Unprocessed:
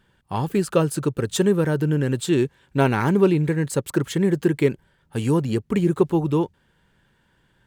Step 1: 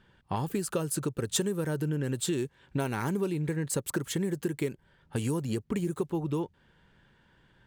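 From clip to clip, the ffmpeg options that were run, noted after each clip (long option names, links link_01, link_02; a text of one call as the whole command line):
ffmpeg -i in.wav -filter_complex "[0:a]acrossover=split=5800[link_01][link_02];[link_01]acompressor=threshold=-28dB:ratio=6[link_03];[link_02]agate=range=-11dB:threshold=-57dB:ratio=16:detection=peak[link_04];[link_03][link_04]amix=inputs=2:normalize=0" out.wav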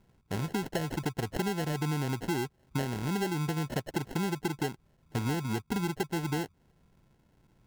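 ffmpeg -i in.wav -af "equalizer=frequency=2700:width_type=o:width=2.6:gain=-14.5,acrusher=samples=37:mix=1:aa=0.000001" out.wav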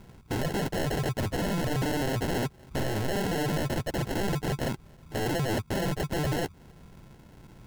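ffmpeg -i in.wav -af "aeval=exprs='0.106*sin(PI/2*6.31*val(0)/0.106)':channel_layout=same,volume=-5.5dB" out.wav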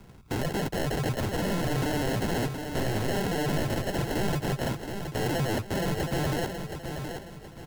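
ffmpeg -i in.wav -filter_complex "[0:a]acrossover=split=110|1000|2800[link_01][link_02][link_03][link_04];[link_01]acrusher=samples=34:mix=1:aa=0.000001[link_05];[link_05][link_02][link_03][link_04]amix=inputs=4:normalize=0,aecho=1:1:722|1444|2166|2888:0.447|0.161|0.0579|0.0208" out.wav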